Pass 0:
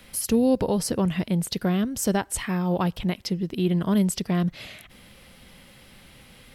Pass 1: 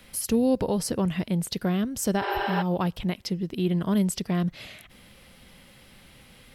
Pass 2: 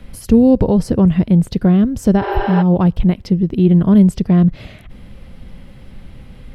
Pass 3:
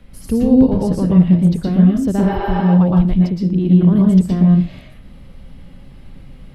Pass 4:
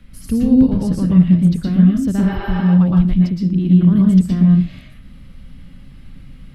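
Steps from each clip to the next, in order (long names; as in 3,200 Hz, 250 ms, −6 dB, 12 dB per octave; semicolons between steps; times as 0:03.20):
healed spectral selection 0:02.25–0:02.59, 310–12,000 Hz before; level −2 dB
spectral tilt −3.5 dB per octave; level +6 dB
convolution reverb RT60 0.30 s, pre-delay 107 ms, DRR −1.5 dB; level −7 dB
flat-topped bell 590 Hz −8 dB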